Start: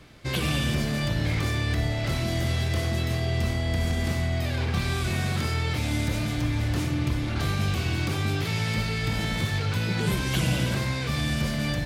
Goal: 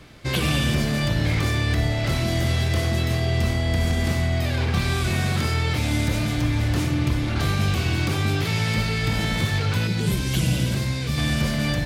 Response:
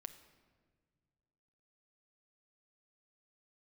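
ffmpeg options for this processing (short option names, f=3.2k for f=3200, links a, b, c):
-filter_complex "[0:a]asettb=1/sr,asplit=3[a][b][c];[a]atrim=end=9.874[d];[b]atrim=start=9.87:end=11.18,asetpts=PTS-STARTPTS,afade=t=in:d=0.004:c=qsin,afade=t=out:st=1.306:d=0.004:c=qsin,equalizer=f=1.1k:w=0.49:g=-8[e];[c]atrim=start=11.176[f];[d][e]acrossfade=d=0.004:c1=hsin:c2=qsin[g];[g][f]acrossfade=d=0.004:c1=qsin:c2=hsin,volume=4dB"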